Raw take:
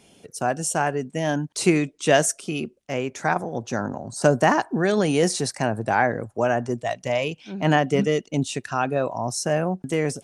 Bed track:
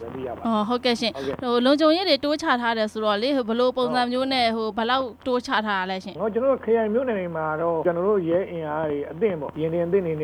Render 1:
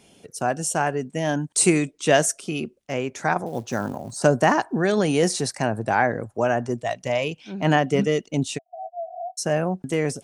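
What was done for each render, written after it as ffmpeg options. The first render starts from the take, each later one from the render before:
ffmpeg -i in.wav -filter_complex "[0:a]asettb=1/sr,asplit=3[link_01][link_02][link_03];[link_01]atrim=end=1.414[link_04];[link_02]atrim=start=1.41:end=1.91,asetpts=PTS-STARTPTS,afade=type=in:duration=0.004:curve=qsin,afade=type=out:start_time=0.496:duration=0.004:curve=qsin,equalizer=frequency=8500:width_type=o:width=0.47:gain=13.5[link_05];[link_03]atrim=start=1.906[link_06];[link_04][link_05]acrossfade=duration=0.004:curve1=hsin:curve2=qsin[link_07];[link_07][link_06]acrossfade=duration=0.004:curve1=qsin:curve2=hsin,asettb=1/sr,asplit=3[link_08][link_09][link_10];[link_08]atrim=end=3.464[link_11];[link_09]atrim=start=3.46:end=4.17,asetpts=PTS-STARTPTS,afade=type=in:duration=0.004:curve=qsin,afade=type=out:start_time=0.706:duration=0.004:curve=qsin,acrusher=bits=6:mode=log:mix=0:aa=0.000001[link_12];[link_10]atrim=start=4.166[link_13];[link_11][link_12]acrossfade=duration=0.004:curve1=hsin:curve2=qsin[link_14];[link_14][link_13]acrossfade=duration=0.004:curve1=qsin:curve2=hsin,asplit=3[link_15][link_16][link_17];[link_15]afade=type=out:start_time=8.57:duration=0.02[link_18];[link_16]asuperpass=centerf=700:order=12:qfactor=6.7,afade=type=in:start_time=8.57:duration=0.02,afade=type=out:start_time=9.37:duration=0.02[link_19];[link_17]afade=type=in:start_time=9.37:duration=0.02[link_20];[link_18][link_19][link_20]amix=inputs=3:normalize=0" out.wav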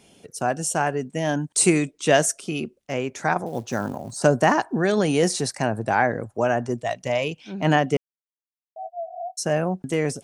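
ffmpeg -i in.wav -filter_complex "[0:a]asplit=3[link_01][link_02][link_03];[link_01]atrim=end=7.97,asetpts=PTS-STARTPTS,afade=type=out:start_time=7.966:duration=0.004:curve=hsin[link_04];[link_02]atrim=start=7.97:end=8.76,asetpts=PTS-STARTPTS,volume=0[link_05];[link_03]atrim=start=8.76,asetpts=PTS-STARTPTS,afade=type=in:duration=0.004:curve=hsin[link_06];[link_04][link_05][link_06]concat=n=3:v=0:a=1" out.wav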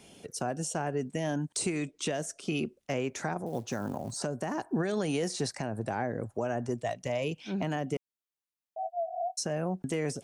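ffmpeg -i in.wav -filter_complex "[0:a]acrossover=split=560|7700[link_01][link_02][link_03];[link_01]acompressor=threshold=-25dB:ratio=4[link_04];[link_02]acompressor=threshold=-32dB:ratio=4[link_05];[link_03]acompressor=threshold=-47dB:ratio=4[link_06];[link_04][link_05][link_06]amix=inputs=3:normalize=0,alimiter=limit=-21dB:level=0:latency=1:release=441" out.wav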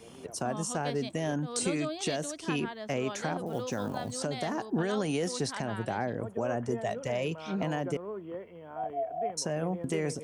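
ffmpeg -i in.wav -i bed.wav -filter_complex "[1:a]volume=-18dB[link_01];[0:a][link_01]amix=inputs=2:normalize=0" out.wav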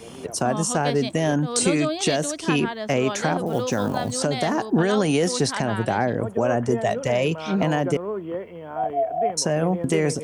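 ffmpeg -i in.wav -af "volume=10dB" out.wav

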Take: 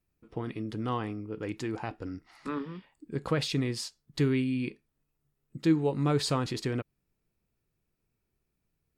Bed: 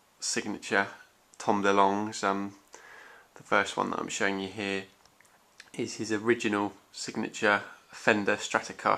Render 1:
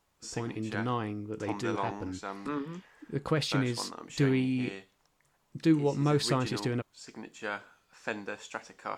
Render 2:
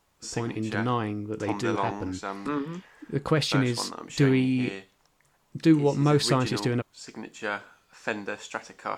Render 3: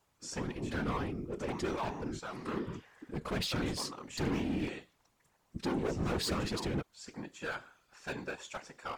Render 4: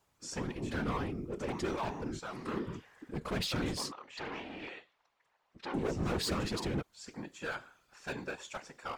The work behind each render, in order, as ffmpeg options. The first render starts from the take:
ffmpeg -i in.wav -i bed.wav -filter_complex "[1:a]volume=-11.5dB[link_01];[0:a][link_01]amix=inputs=2:normalize=0" out.wav
ffmpeg -i in.wav -af "volume=5dB" out.wav
ffmpeg -i in.wav -af "volume=25dB,asoftclip=hard,volume=-25dB,afftfilt=real='hypot(re,im)*cos(2*PI*random(0))':imag='hypot(re,im)*sin(2*PI*random(1))':win_size=512:overlap=0.75" out.wav
ffmpeg -i in.wav -filter_complex "[0:a]asettb=1/sr,asplit=3[link_01][link_02][link_03];[link_01]atrim=end=3.924[link_04];[link_02]atrim=start=3.92:end=5.74,asetpts=PTS-STARTPTS,afade=type=in:duration=0.004:curve=qsin,afade=type=out:start_time=1.816:duration=0.004:curve=qsin,acrossover=split=490 4500:gain=0.126 1 0.1[link_05][link_06][link_07];[link_05][link_06][link_07]amix=inputs=3:normalize=0[link_08];[link_03]atrim=start=5.736[link_09];[link_04][link_08]acrossfade=duration=0.004:curve1=hsin:curve2=qsin[link_10];[link_10][link_09]acrossfade=duration=0.004:curve1=qsin:curve2=hsin" out.wav

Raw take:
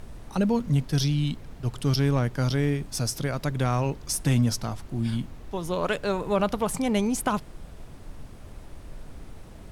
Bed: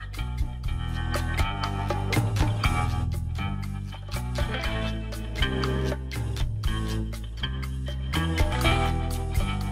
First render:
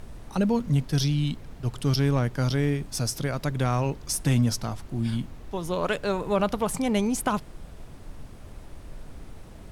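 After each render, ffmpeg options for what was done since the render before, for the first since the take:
ffmpeg -i in.wav -af anull out.wav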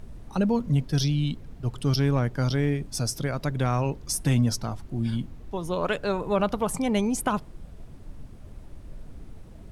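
ffmpeg -i in.wav -af "afftdn=noise_reduction=7:noise_floor=-44" out.wav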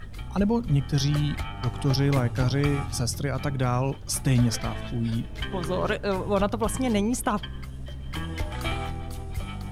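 ffmpeg -i in.wav -i bed.wav -filter_complex "[1:a]volume=-7dB[link_01];[0:a][link_01]amix=inputs=2:normalize=0" out.wav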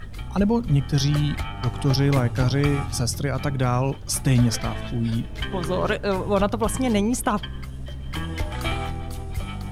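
ffmpeg -i in.wav -af "volume=3dB" out.wav

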